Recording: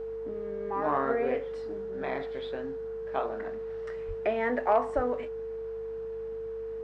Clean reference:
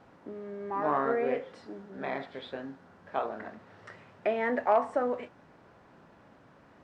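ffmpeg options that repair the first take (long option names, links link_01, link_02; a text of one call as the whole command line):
ffmpeg -i in.wav -filter_complex "[0:a]bandreject=frequency=50.6:width_type=h:width=4,bandreject=frequency=101.2:width_type=h:width=4,bandreject=frequency=151.8:width_type=h:width=4,bandreject=frequency=202.4:width_type=h:width=4,bandreject=frequency=450:width=30,asplit=3[link_01][link_02][link_03];[link_01]afade=type=out:start_time=4.07:duration=0.02[link_04];[link_02]highpass=frequency=140:width=0.5412,highpass=frequency=140:width=1.3066,afade=type=in:start_time=4.07:duration=0.02,afade=type=out:start_time=4.19:duration=0.02[link_05];[link_03]afade=type=in:start_time=4.19:duration=0.02[link_06];[link_04][link_05][link_06]amix=inputs=3:normalize=0,asplit=3[link_07][link_08][link_09];[link_07]afade=type=out:start_time=4.95:duration=0.02[link_10];[link_08]highpass=frequency=140:width=0.5412,highpass=frequency=140:width=1.3066,afade=type=in:start_time=4.95:duration=0.02,afade=type=out:start_time=5.07:duration=0.02[link_11];[link_09]afade=type=in:start_time=5.07:duration=0.02[link_12];[link_10][link_11][link_12]amix=inputs=3:normalize=0" out.wav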